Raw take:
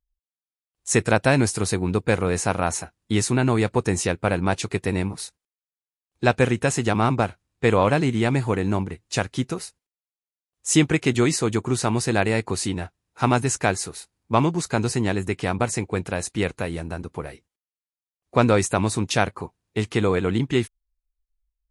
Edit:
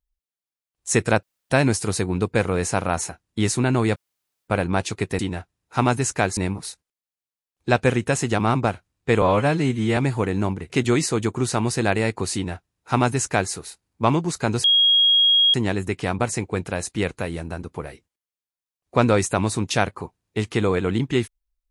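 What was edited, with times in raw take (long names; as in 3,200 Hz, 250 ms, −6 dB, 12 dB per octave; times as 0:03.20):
0:01.23: splice in room tone 0.27 s
0:03.69–0:04.21: fill with room tone
0:07.77–0:08.27: time-stretch 1.5×
0:09.00–0:11.00: remove
0:12.64–0:13.82: duplicate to 0:04.92
0:14.94: insert tone 3,280 Hz −13 dBFS 0.90 s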